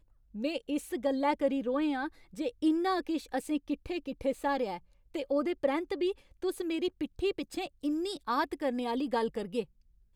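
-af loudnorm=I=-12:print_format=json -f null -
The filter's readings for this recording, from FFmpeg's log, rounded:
"input_i" : "-33.1",
"input_tp" : "-16.0",
"input_lra" : "2.1",
"input_thresh" : "-43.3",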